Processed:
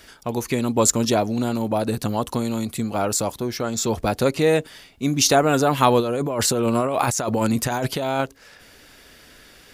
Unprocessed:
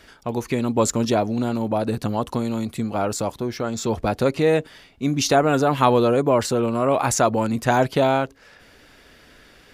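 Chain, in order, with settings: treble shelf 5.1 kHz +10.5 dB; 6.00–8.21 s: compressor with a negative ratio -22 dBFS, ratio -1

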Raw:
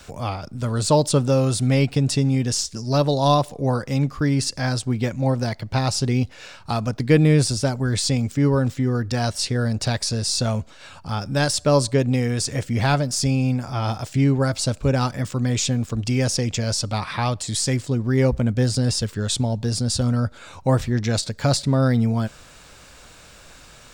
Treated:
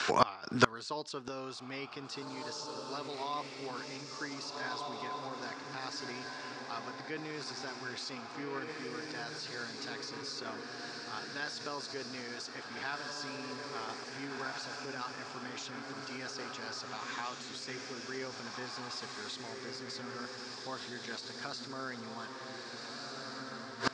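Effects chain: treble shelf 3 kHz +8 dB; on a send: echo that smears into a reverb 1668 ms, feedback 46%, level -3 dB; on the sum: peak limiter -10 dBFS, peak gain reduction 7 dB; cabinet simulation 380–5100 Hz, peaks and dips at 390 Hz +4 dB, 560 Hz -9 dB, 1.1 kHz +6 dB, 1.6 kHz +7 dB, 3.5 kHz -3 dB; inverted gate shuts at -21 dBFS, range -27 dB; trim +10.5 dB

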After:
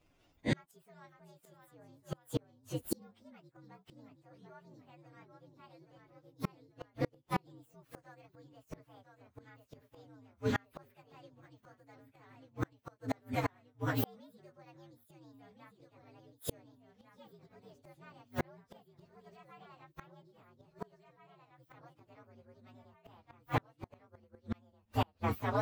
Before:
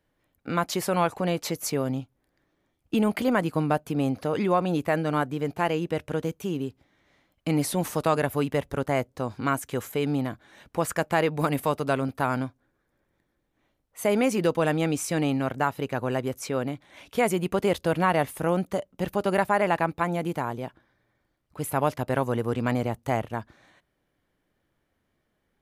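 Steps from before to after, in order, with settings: frequency axis rescaled in octaves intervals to 120%; ever faster or slower copies 521 ms, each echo -1 st, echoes 2, each echo -6 dB; inverted gate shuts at -26 dBFS, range -38 dB; trim +6.5 dB

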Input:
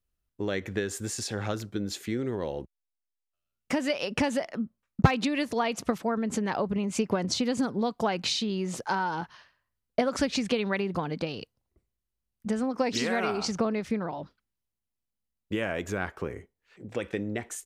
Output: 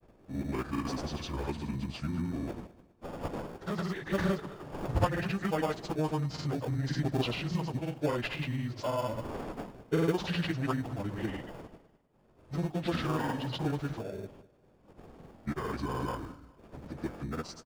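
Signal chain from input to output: frequency-domain pitch shifter -7 st; wind noise 540 Hz -45 dBFS; dynamic bell 1.2 kHz, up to +4 dB, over -48 dBFS, Q 0.75; in parallel at -7.5 dB: sample-and-hold 22×; on the sum: granulator, pitch spread up and down by 0 st; feedback delay 202 ms, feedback 32%, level -19 dB; trim -4.5 dB

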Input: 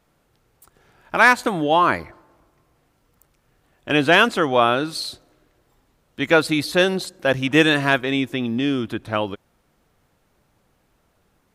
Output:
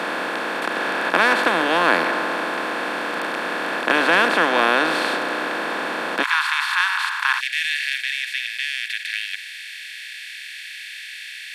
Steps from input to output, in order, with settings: spectral levelling over time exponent 0.2; steep high-pass 170 Hz 72 dB/octave, from 6.22 s 910 Hz, from 7.39 s 1.8 kHz; dynamic bell 1.7 kHz, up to +3 dB, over -20 dBFS, Q 0.77; trim -11 dB

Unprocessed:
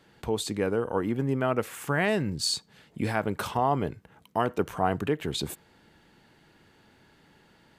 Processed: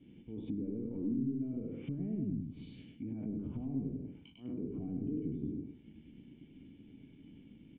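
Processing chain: spectral sustain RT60 0.63 s; peak limiter -20.5 dBFS, peak gain reduction 10.5 dB; slow attack 523 ms; waveshaping leveller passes 2; cascade formant filter i; bass shelf 320 Hz +9 dB; compression 2:1, threshold -42 dBFS, peak gain reduction 11 dB; reverb removal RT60 0.58 s; on a send: feedback delay 100 ms, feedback 23%, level -3 dB; on the sum: low-pass that closes with the level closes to 640 Hz, closed at -37 dBFS; trim +1.5 dB

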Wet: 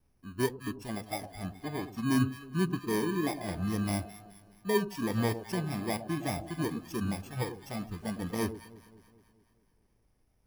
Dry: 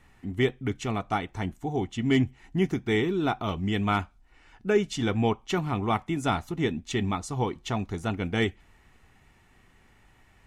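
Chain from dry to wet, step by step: bit-reversed sample order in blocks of 32 samples; low-pass 3.2 kHz 6 dB/octave; echo whose repeats swap between lows and highs 106 ms, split 810 Hz, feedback 75%, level -8.5 dB; wow and flutter 27 cents; spectral noise reduction 9 dB; trim -3 dB

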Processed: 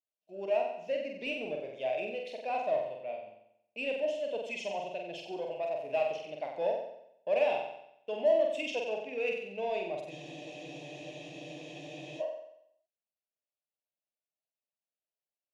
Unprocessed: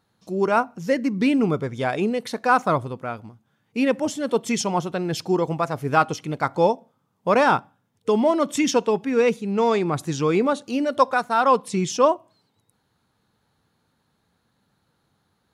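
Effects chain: gate -40 dBFS, range -21 dB; two resonant band-passes 1.3 kHz, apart 2.1 oct; in parallel at -8 dB: saturation -30.5 dBFS, distortion -6 dB; on the sum: wow and flutter 16 cents; on a send: flutter echo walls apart 7.9 m, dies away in 0.76 s; on the sum: spectral freeze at 10.13 s, 2.08 s; trim -5.5 dB

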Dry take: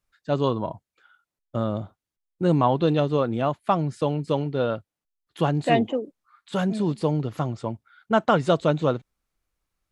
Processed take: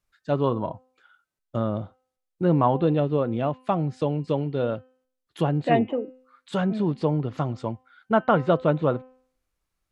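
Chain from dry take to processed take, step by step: 2.84–5.71 s: dynamic bell 1.2 kHz, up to -5 dB, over -38 dBFS, Q 1.1; de-hum 256.9 Hz, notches 12; low-pass that closes with the level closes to 2.2 kHz, closed at -19.5 dBFS

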